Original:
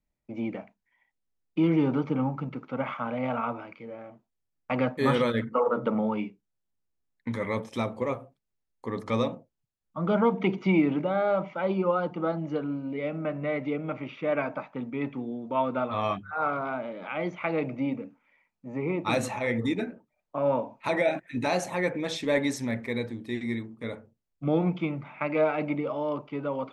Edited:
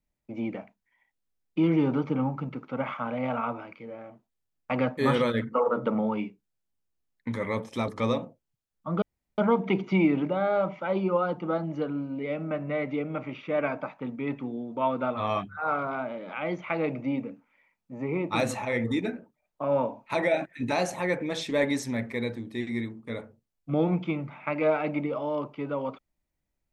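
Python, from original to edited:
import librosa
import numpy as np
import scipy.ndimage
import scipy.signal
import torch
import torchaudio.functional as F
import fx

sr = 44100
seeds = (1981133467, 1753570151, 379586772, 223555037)

y = fx.edit(x, sr, fx.cut(start_s=7.88, length_s=1.1),
    fx.insert_room_tone(at_s=10.12, length_s=0.36), tone=tone)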